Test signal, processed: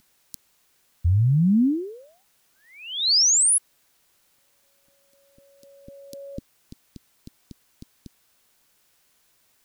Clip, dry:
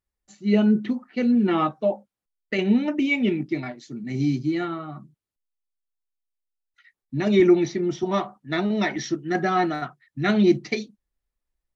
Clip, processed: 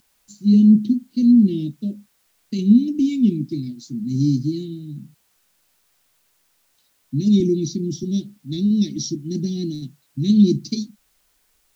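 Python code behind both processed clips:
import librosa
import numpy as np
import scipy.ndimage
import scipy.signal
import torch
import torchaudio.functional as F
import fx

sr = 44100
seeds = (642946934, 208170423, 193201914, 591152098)

y = x + 10.0 ** (-38.0 / 20.0) * np.sin(2.0 * np.pi * 1500.0 * np.arange(len(x)) / sr)
y = scipy.signal.sosfilt(scipy.signal.ellip(3, 1.0, 80, [260.0, 4500.0], 'bandstop', fs=sr, output='sos'), y)
y = fx.quant_dither(y, sr, seeds[0], bits=12, dither='triangular')
y = y * 10.0 ** (7.5 / 20.0)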